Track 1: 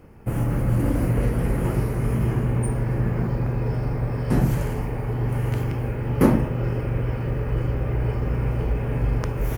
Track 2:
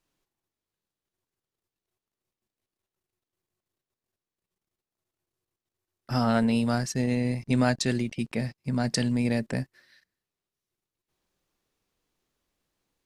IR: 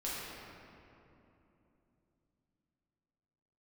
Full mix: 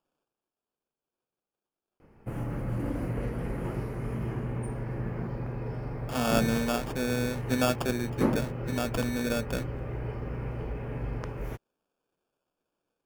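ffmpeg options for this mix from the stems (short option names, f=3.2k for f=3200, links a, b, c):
-filter_complex "[0:a]highshelf=f=6.7k:g=-10,adelay=2000,volume=-7.5dB[a];[1:a]highpass=150,equalizer=f=520:t=o:w=0.78:g=6.5,acrusher=samples=22:mix=1:aa=0.000001,volume=-3.5dB[b];[a][b]amix=inputs=2:normalize=0,equalizer=f=64:t=o:w=2.5:g=-5.5"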